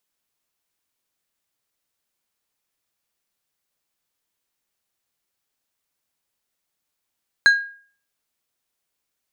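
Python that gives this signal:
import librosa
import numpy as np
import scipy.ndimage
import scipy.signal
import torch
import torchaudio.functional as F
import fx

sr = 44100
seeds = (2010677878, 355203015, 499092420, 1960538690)

y = fx.strike_glass(sr, length_s=0.89, level_db=-7, body='plate', hz=1630.0, decay_s=0.46, tilt_db=10.5, modes=5)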